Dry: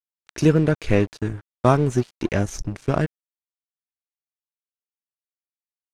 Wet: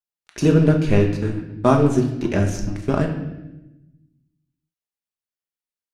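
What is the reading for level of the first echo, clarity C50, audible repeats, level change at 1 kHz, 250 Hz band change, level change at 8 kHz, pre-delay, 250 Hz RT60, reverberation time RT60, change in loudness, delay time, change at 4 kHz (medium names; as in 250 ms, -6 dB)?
no echo, 7.5 dB, no echo, +0.5 dB, +3.5 dB, 0.0 dB, 5 ms, 1.5 s, 1.0 s, +2.5 dB, no echo, +1.0 dB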